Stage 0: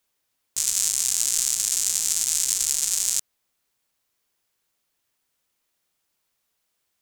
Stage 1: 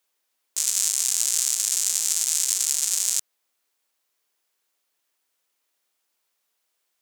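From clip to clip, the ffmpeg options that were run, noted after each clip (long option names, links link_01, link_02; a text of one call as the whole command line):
ffmpeg -i in.wav -af "highpass=320" out.wav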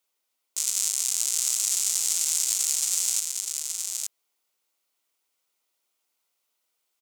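ffmpeg -i in.wav -filter_complex "[0:a]bandreject=frequency=1700:width=6.4,asplit=2[link_01][link_02];[link_02]aecho=0:1:871:0.596[link_03];[link_01][link_03]amix=inputs=2:normalize=0,volume=-3dB" out.wav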